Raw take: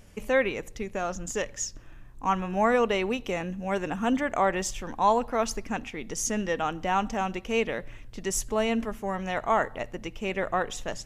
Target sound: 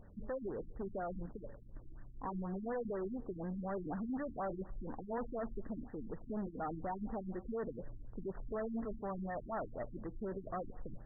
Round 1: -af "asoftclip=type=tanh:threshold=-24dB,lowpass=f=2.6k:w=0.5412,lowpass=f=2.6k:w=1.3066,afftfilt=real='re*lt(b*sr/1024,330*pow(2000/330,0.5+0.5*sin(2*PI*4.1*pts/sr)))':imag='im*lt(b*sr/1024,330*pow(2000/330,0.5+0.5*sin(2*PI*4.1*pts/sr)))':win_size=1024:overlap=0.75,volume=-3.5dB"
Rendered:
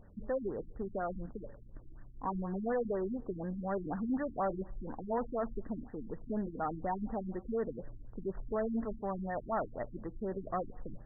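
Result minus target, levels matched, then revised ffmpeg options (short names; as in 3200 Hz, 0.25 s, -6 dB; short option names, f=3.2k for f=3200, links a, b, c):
soft clip: distortion -5 dB
-af "asoftclip=type=tanh:threshold=-32dB,lowpass=f=2.6k:w=0.5412,lowpass=f=2.6k:w=1.3066,afftfilt=real='re*lt(b*sr/1024,330*pow(2000/330,0.5+0.5*sin(2*PI*4.1*pts/sr)))':imag='im*lt(b*sr/1024,330*pow(2000/330,0.5+0.5*sin(2*PI*4.1*pts/sr)))':win_size=1024:overlap=0.75,volume=-3.5dB"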